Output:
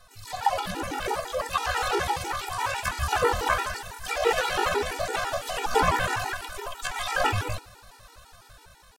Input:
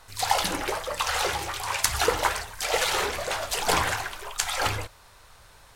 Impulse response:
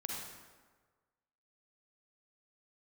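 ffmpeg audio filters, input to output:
-filter_complex "[0:a]acrossover=split=2500[a][b];[b]acompressor=threshold=-36dB:ratio=4:attack=1:release=60[c];[a][c]amix=inputs=2:normalize=0,bandreject=f=2.1k:w=13,dynaudnorm=f=220:g=5:m=6dB,atempo=0.64,asplit=2[d][e];[1:a]atrim=start_sample=2205,adelay=51[f];[e][f]afir=irnorm=-1:irlink=0,volume=-21.5dB[g];[d][g]amix=inputs=2:normalize=0,afftfilt=real='re*gt(sin(2*PI*6*pts/sr)*(1-2*mod(floor(b*sr/1024/250),2)),0)':imag='im*gt(sin(2*PI*6*pts/sr)*(1-2*mod(floor(b*sr/1024/250),2)),0)':win_size=1024:overlap=0.75"

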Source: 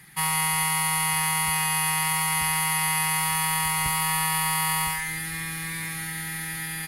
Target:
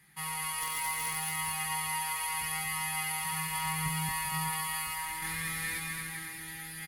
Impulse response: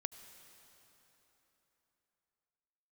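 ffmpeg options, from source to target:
-filter_complex "[0:a]asettb=1/sr,asplit=3[a][b][c];[a]atrim=end=3.244[d];[b]atrim=start=3.24:end=4.09,asetpts=PTS-STARTPTS,afade=t=in:d=0.004:c=qsin,afade=t=out:st=0.846:d=0.004:c=qsin,equalizer=f=160:t=o:w=0.31:g=14[e];[c]atrim=start=4.086[f];[d][e]acrossfade=d=0.004:c1=hsin:c2=qsin[g];[g][f]acrossfade=d=0.004:c1=qsin:c2=hsin,asettb=1/sr,asplit=3[h][i][j];[h]atrim=end=5.224[k];[i]atrim=start=5.22:end=5.78,asetpts=PTS-STARTPTS,afade=t=in:d=0.004:c=qsin,afade=t=out:st=0.556:d=0.004:c=qsin,acontrast=89[l];[j]atrim=start=5.776[m];[k][l]acrossfade=d=0.004:c1=hsin:c2=qsin[n];[n][m]acrossfade=d=0.004:c1=qsin:c2=hsin,flanger=delay=20:depth=2.4:speed=0.72,asettb=1/sr,asplit=3[o][p][q];[o]atrim=end=0.614[r];[p]atrim=start=0.61:end=1.15,asetpts=PTS-STARTPTS,afade=t=in:d=0.004:c=qsin,afade=t=out:st=0.536:d=0.004:c=qsin,aeval=exprs='(mod(8.91*val(0)+1,2)-1)/8.91':c=same[s];[q]atrim=start=1.146[t];[r][s]acrossfade=d=0.004:c1=hsin:c2=qsin[u];[u][t]acrossfade=d=0.004:c1=qsin:c2=hsin,aecho=1:1:230|391|503.7|582.6|637.8:0.631|0.398|0.251|0.158|0.1,volume=-8.5dB"

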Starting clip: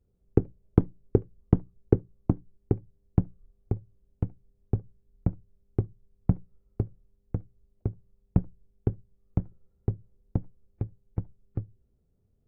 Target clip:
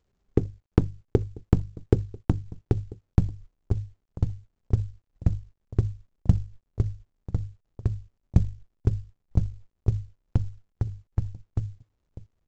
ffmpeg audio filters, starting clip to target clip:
-filter_complex "[0:a]bandreject=f=50:t=h:w=6,bandreject=f=100:t=h:w=6,bandreject=f=150:t=h:w=6,asplit=2[a][b];[b]adelay=991.3,volume=-22dB,highshelf=f=4k:g=-22.3[c];[a][c]amix=inputs=2:normalize=0,asubboost=boost=2.5:cutoff=130,acompressor=mode=upward:threshold=-30dB:ratio=2.5,adynamicequalizer=threshold=0.0112:dfrequency=100:dqfactor=4.5:tfrequency=100:tqfactor=4.5:attack=5:release=100:ratio=0.375:range=1.5:mode=boostabove:tftype=bell,agate=range=-28dB:threshold=-40dB:ratio=16:detection=peak" -ar 16000 -c:a pcm_mulaw

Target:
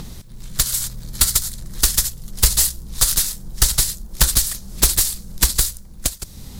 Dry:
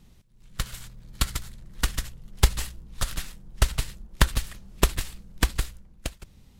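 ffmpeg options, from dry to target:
-filter_complex "[0:a]acrossover=split=3200[a][b];[a]acompressor=mode=upward:threshold=-29dB:ratio=2.5[c];[c][b]amix=inputs=2:normalize=0,aexciter=amount=3.1:drive=9:freq=3.9k,asoftclip=type=tanh:threshold=-13.5dB,volume=7dB"

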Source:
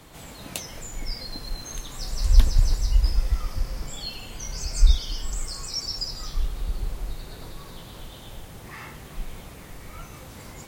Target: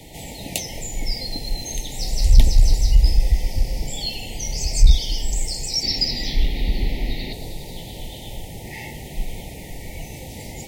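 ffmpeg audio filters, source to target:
-filter_complex "[0:a]asettb=1/sr,asplit=3[a][b][c];[a]atrim=end=5.834[d];[b]atrim=start=5.83:end=7.33,asetpts=PTS-STARTPTS,afade=t=in:d=0.004:c=qsin,afade=t=out:st=1.496:d=0.004:c=qsin,equalizer=f=250:t=o:w=1:g=10,equalizer=f=2k:t=o:w=1:g=10,equalizer=f=4k:t=o:w=1:g=8,equalizer=f=8k:t=o:w=1:g=-11[e];[c]atrim=start=7.326[f];[d][e]acrossfade=d=0.004:c1=hsin:c2=qsin[g];[g][f]acrossfade=d=0.004:c1=qsin:c2=hsin,acontrast=86,asuperstop=centerf=1300:order=20:qfactor=1.4"

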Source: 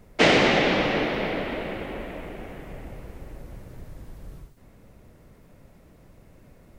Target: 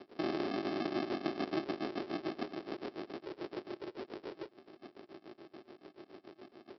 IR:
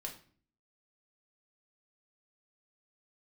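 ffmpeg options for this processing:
-filter_complex "[0:a]acrossover=split=2000[a][b];[a]aeval=exprs='val(0)*(1-1/2+1/2*cos(2*PI*7*n/s))':c=same[c];[b]aeval=exprs='val(0)*(1-1/2-1/2*cos(2*PI*7*n/s))':c=same[d];[c][d]amix=inputs=2:normalize=0,alimiter=limit=-21.5dB:level=0:latency=1:release=101,aresample=11025,acrusher=samples=23:mix=1:aa=0.000001,aresample=44100,acompressor=threshold=-35dB:ratio=12,highpass=f=370:t=q:w=3.7,volume=4.5dB"

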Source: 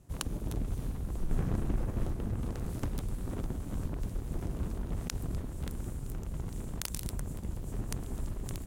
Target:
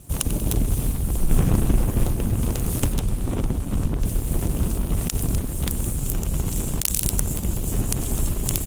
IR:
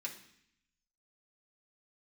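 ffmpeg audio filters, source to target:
-filter_complex "[0:a]aecho=1:1:94|188|282|376:0.0794|0.0437|0.024|0.0132,aexciter=amount=2.8:drive=2.3:freq=2.5k,asettb=1/sr,asplit=3[a][b][c];[a]atrim=end=2.944[d];[b]atrim=start=2.94:end=4.06,asetpts=PTS-STARTPTS,afade=t=in:d=0.004:c=qsin,afade=t=out:st=1.116:d=0.004:c=qsin,lowpass=f=3.7k:p=1[e];[c]atrim=start=4.056[f];[d][e]acrossfade=d=0.004:c1=hsin:c2=qsin[g];[g][f]acrossfade=d=0.004:c1=qsin:c2=hsin,alimiter=level_in=13.5dB:limit=-1dB:release=50:level=0:latency=1,volume=-1dB" -ar 48000 -c:a libopus -b:a 24k

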